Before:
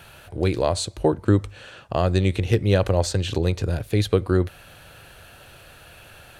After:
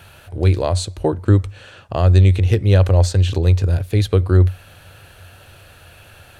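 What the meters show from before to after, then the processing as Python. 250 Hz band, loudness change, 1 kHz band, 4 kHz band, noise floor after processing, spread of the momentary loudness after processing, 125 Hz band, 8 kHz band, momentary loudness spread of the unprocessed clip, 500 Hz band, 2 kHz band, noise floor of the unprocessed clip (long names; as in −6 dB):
+1.0 dB, +6.5 dB, +1.0 dB, +1.0 dB, −46 dBFS, 8 LU, +9.5 dB, +1.0 dB, 7 LU, +1.0 dB, +1.0 dB, −48 dBFS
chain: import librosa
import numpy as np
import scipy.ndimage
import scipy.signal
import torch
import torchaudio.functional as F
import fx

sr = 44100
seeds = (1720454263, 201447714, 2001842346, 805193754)

y = fx.peak_eq(x, sr, hz=92.0, db=12.0, octaves=0.28)
y = y * librosa.db_to_amplitude(1.0)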